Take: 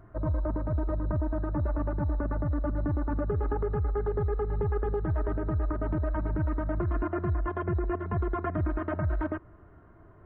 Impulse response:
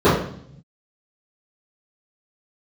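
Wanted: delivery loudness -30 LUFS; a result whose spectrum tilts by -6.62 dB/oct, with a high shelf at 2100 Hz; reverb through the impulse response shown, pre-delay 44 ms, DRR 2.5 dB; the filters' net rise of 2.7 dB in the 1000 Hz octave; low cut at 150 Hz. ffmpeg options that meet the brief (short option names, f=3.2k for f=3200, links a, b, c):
-filter_complex "[0:a]highpass=150,equalizer=f=1k:t=o:g=5,highshelf=f=2.1k:g=-7.5,asplit=2[a][b];[1:a]atrim=start_sample=2205,adelay=44[c];[b][c]afir=irnorm=-1:irlink=0,volume=-29dB[d];[a][d]amix=inputs=2:normalize=0,volume=-2.5dB"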